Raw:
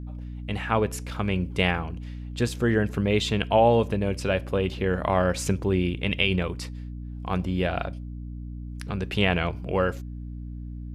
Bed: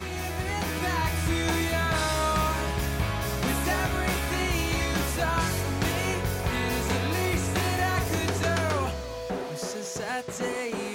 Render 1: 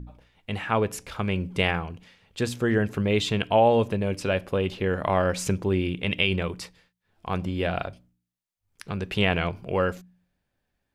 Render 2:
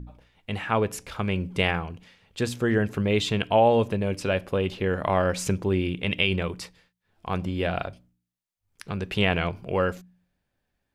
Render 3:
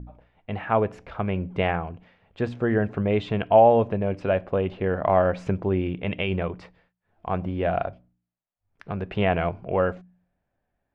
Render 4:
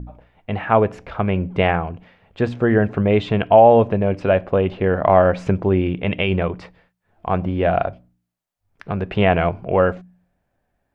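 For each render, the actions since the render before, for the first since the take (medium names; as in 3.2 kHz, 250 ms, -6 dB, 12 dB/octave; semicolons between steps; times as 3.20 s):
de-hum 60 Hz, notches 5
no audible change
low-pass 1.9 kHz 12 dB/octave; peaking EQ 680 Hz +7 dB 0.47 oct
trim +6.5 dB; peak limiter -1 dBFS, peak gain reduction 2.5 dB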